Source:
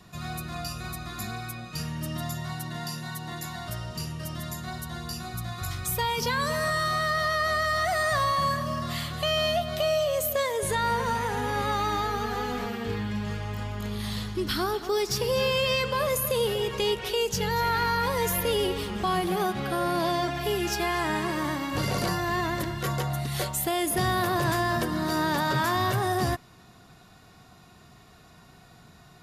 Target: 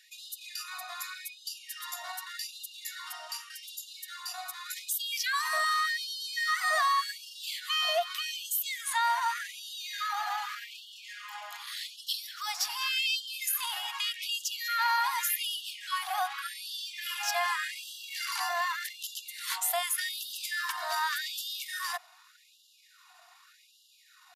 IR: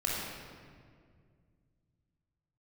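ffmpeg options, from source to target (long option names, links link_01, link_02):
-af "atempo=1.2,afftfilt=real='re*gte(b*sr/1024,630*pow(2800/630,0.5+0.5*sin(2*PI*0.85*pts/sr)))':imag='im*gte(b*sr/1024,630*pow(2800/630,0.5+0.5*sin(2*PI*0.85*pts/sr)))':win_size=1024:overlap=0.75"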